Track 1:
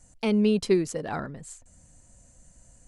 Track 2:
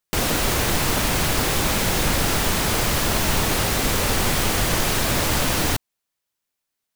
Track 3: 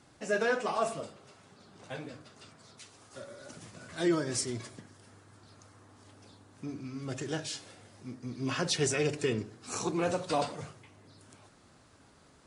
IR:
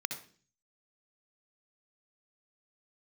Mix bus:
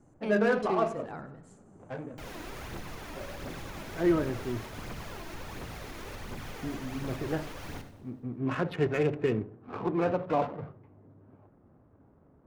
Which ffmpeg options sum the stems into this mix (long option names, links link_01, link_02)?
-filter_complex "[0:a]volume=-12dB,asplit=3[link_01][link_02][link_03];[link_02]volume=-8.5dB[link_04];[link_03]volume=-14.5dB[link_05];[1:a]alimiter=limit=-16dB:level=0:latency=1:release=404,aphaser=in_gain=1:out_gain=1:delay=3.3:decay=0.49:speed=1.4:type=triangular,adelay=2050,volume=-18.5dB,asplit=3[link_06][link_07][link_08];[link_07]volume=-3.5dB[link_09];[link_08]volume=-11dB[link_10];[2:a]lowpass=frequency=3200:width=0.5412,lowpass=frequency=3200:width=1.3066,adynamicsmooth=sensitivity=7.5:basefreq=680,volume=2.5dB,asplit=2[link_11][link_12];[link_12]volume=-21dB[link_13];[3:a]atrim=start_sample=2205[link_14];[link_04][link_09][link_13]amix=inputs=3:normalize=0[link_15];[link_15][link_14]afir=irnorm=-1:irlink=0[link_16];[link_05][link_10]amix=inputs=2:normalize=0,aecho=0:1:96|192|288|384|480|576|672|768|864:1|0.59|0.348|0.205|0.121|0.0715|0.0422|0.0249|0.0147[link_17];[link_01][link_06][link_11][link_16][link_17]amix=inputs=5:normalize=0,highshelf=frequency=3100:gain=-11"